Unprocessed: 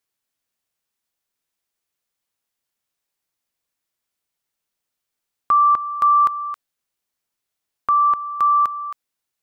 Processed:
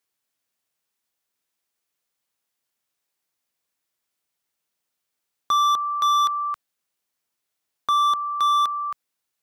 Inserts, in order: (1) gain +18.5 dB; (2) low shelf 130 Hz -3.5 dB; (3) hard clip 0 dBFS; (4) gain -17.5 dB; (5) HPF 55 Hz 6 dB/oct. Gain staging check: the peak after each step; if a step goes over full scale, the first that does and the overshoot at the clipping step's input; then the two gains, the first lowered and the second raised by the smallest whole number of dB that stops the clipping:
+8.0, +8.0, 0.0, -17.5, -16.5 dBFS; step 1, 8.0 dB; step 1 +10.5 dB, step 4 -9.5 dB

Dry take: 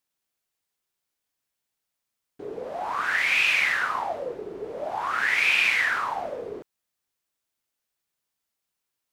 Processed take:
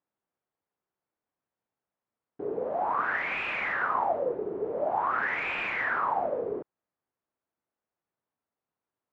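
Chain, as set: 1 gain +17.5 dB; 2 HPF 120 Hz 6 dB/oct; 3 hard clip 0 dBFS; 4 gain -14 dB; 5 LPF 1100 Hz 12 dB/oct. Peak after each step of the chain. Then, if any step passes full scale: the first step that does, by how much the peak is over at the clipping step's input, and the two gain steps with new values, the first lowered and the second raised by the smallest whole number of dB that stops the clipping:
+8.0, +8.0, 0.0, -14.0, -16.0 dBFS; step 1, 8.0 dB; step 1 +9.5 dB, step 4 -6 dB

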